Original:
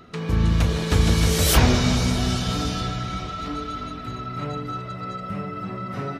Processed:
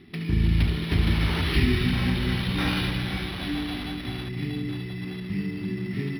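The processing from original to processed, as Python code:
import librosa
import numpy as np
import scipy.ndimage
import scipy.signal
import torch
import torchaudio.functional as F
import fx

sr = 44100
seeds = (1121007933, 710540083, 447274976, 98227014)

y = fx.cvsd(x, sr, bps=64000)
y = fx.brickwall_bandstop(y, sr, low_hz=420.0, high_hz=1700.0)
y = fx.low_shelf(y, sr, hz=170.0, db=-6.0)
y = y + 10.0 ** (-8.0 / 20.0) * np.pad(y, (int(71 * sr / 1000.0), 0))[:len(y)]
y = fx.rider(y, sr, range_db=3, speed_s=2.0)
y = fx.lowpass(y, sr, hz=6300.0, slope=24, at=(1.41, 1.91), fade=0.02)
y = fx.high_shelf(y, sr, hz=5000.0, db=11.5, at=(2.58, 4.29))
y = np.interp(np.arange(len(y)), np.arange(len(y))[::6], y[::6])
y = y * librosa.db_to_amplitude(1.5)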